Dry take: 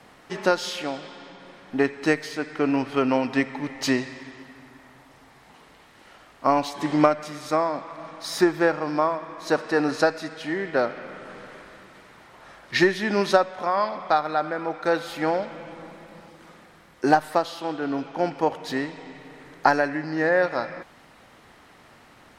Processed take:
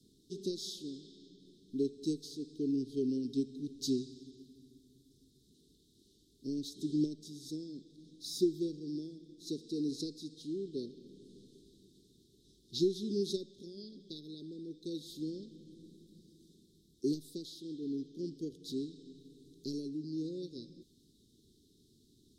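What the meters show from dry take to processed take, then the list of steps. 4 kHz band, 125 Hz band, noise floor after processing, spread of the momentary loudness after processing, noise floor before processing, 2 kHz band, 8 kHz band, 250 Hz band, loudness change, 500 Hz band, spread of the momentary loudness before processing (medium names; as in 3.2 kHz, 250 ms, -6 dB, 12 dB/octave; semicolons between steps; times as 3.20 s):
-10.5 dB, -10.0 dB, -68 dBFS, 20 LU, -53 dBFS, under -40 dB, -9.5 dB, -9.5 dB, -14.0 dB, -16.0 dB, 18 LU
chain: Chebyshev band-stop 410–3600 Hz, order 5; trim -9 dB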